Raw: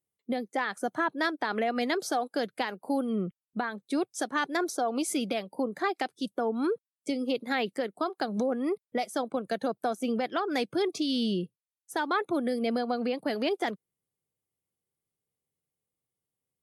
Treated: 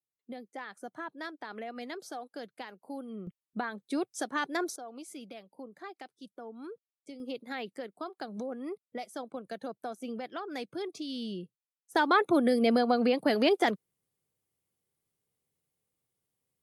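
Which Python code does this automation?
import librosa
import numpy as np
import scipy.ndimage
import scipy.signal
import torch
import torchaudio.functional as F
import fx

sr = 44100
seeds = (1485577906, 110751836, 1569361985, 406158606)

y = fx.gain(x, sr, db=fx.steps((0.0, -12.0), (3.27, -3.0), (4.76, -15.5), (7.2, -9.0), (11.95, 4.0)))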